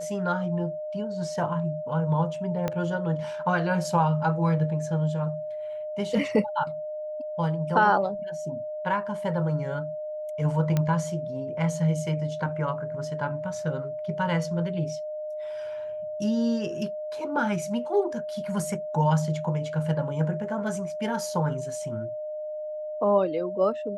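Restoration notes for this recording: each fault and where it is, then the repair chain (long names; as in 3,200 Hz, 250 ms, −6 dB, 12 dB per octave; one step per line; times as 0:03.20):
whistle 610 Hz −31 dBFS
0:02.68: click −14 dBFS
0:10.77: click −12 dBFS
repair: click removal
notch filter 610 Hz, Q 30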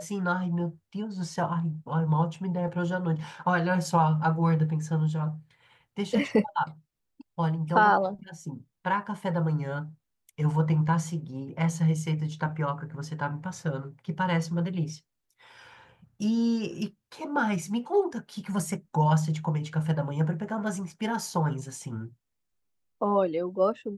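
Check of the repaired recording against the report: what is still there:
0:02.68: click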